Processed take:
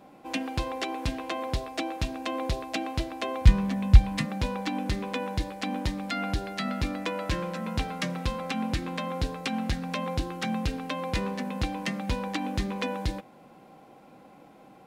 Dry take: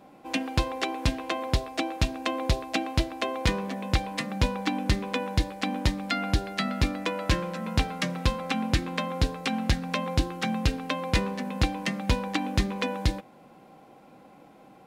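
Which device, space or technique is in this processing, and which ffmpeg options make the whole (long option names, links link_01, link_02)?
soft clipper into limiter: -filter_complex "[0:a]asoftclip=type=tanh:threshold=-12.5dB,alimiter=limit=-18.5dB:level=0:latency=1:release=98,asplit=3[link_01][link_02][link_03];[link_01]afade=type=out:start_time=3.4:duration=0.02[link_04];[link_02]asubboost=boost=11:cutoff=130,afade=type=in:start_time=3.4:duration=0.02,afade=type=out:start_time=4.25:duration=0.02[link_05];[link_03]afade=type=in:start_time=4.25:duration=0.02[link_06];[link_04][link_05][link_06]amix=inputs=3:normalize=0"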